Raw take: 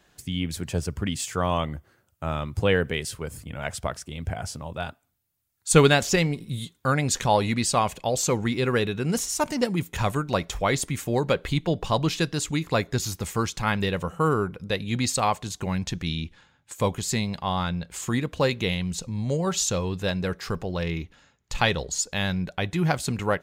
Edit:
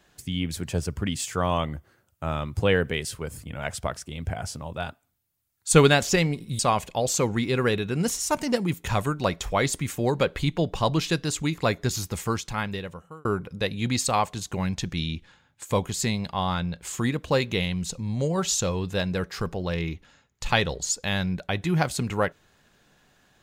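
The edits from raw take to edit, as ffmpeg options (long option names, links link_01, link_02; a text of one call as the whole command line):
ffmpeg -i in.wav -filter_complex "[0:a]asplit=3[link_01][link_02][link_03];[link_01]atrim=end=6.592[link_04];[link_02]atrim=start=7.678:end=14.34,asetpts=PTS-STARTPTS,afade=type=out:start_time=5.602:duration=1.06[link_05];[link_03]atrim=start=14.34,asetpts=PTS-STARTPTS,afade=type=in:duration=0.004:curve=hsin[link_06];[link_05][link_06]concat=n=2:v=0:a=1[link_07];[link_04][link_07]acrossfade=duration=0.004:curve1=hsin:curve2=hsin" out.wav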